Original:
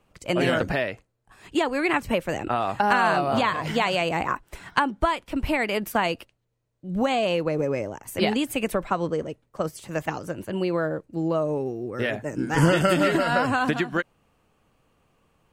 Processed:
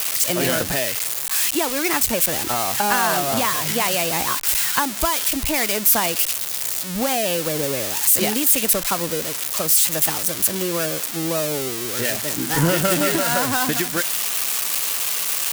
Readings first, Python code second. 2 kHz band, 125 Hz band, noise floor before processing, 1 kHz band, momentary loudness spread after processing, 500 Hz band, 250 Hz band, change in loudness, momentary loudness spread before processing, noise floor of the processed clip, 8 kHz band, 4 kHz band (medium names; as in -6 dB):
+2.0 dB, 0.0 dB, -70 dBFS, +0.5 dB, 7 LU, 0.0 dB, 0.0 dB, +6.0 dB, 11 LU, -28 dBFS, +23.5 dB, +9.5 dB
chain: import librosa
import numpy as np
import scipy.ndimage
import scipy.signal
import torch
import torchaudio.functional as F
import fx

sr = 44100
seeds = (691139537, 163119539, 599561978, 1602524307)

y = x + 0.5 * 10.0 ** (-10.5 / 20.0) * np.diff(np.sign(x), prepend=np.sign(x[:1]))